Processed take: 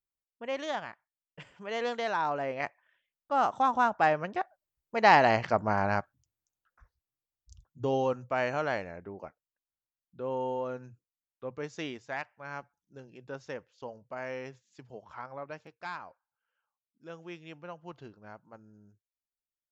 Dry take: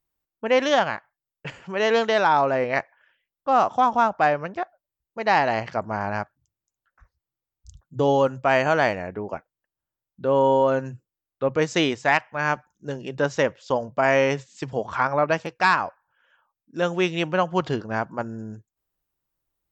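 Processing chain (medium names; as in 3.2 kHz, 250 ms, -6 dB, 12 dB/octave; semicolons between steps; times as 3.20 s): Doppler pass-by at 5.39 s, 17 m/s, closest 16 m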